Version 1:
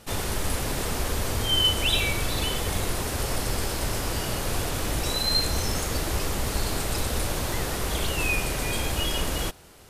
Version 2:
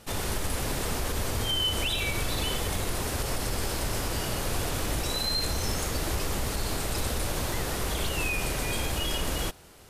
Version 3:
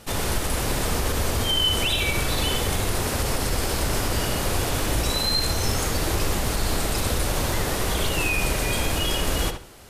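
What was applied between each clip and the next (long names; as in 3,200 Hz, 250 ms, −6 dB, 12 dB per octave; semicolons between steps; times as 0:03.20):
brickwall limiter −17.5 dBFS, peak gain reduction 6 dB; level −1.5 dB
feedback echo with a low-pass in the loop 71 ms, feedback 24%, low-pass 4,100 Hz, level −7 dB; level +5 dB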